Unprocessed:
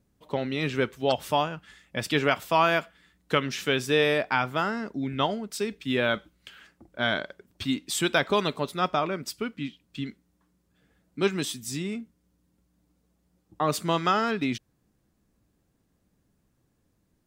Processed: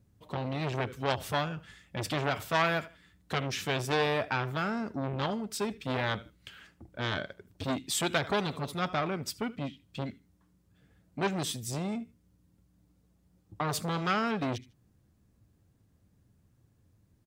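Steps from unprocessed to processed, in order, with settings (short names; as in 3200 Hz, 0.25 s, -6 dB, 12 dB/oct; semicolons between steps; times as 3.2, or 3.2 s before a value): bell 98 Hz +12.5 dB 1.1 oct; on a send: feedback echo 77 ms, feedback 24%, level -22 dB; on the sum: core saturation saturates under 1800 Hz; gain -1.5 dB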